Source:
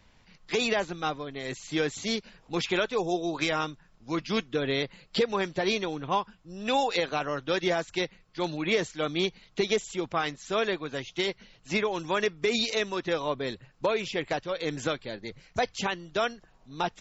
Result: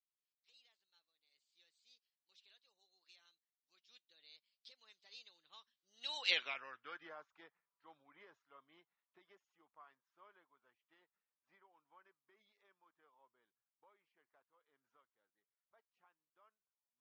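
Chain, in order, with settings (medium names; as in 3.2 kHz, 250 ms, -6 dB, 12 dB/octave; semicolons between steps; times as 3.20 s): Doppler pass-by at 6.34 s, 33 m/s, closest 2.8 m; band-pass sweep 4.1 kHz -> 1.1 kHz, 6.05–7.16 s; trim +2.5 dB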